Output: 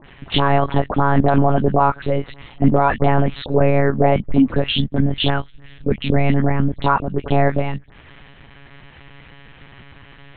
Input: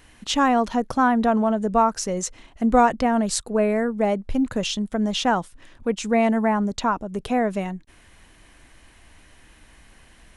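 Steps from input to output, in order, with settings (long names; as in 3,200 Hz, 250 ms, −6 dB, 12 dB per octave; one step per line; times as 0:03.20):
0:04.74–0:06.84: parametric band 920 Hz −10.5 dB 1.5 octaves
all-pass dispersion highs, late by 66 ms, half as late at 1,800 Hz
one-pitch LPC vocoder at 8 kHz 140 Hz
boost into a limiter +9.5 dB
level −1.5 dB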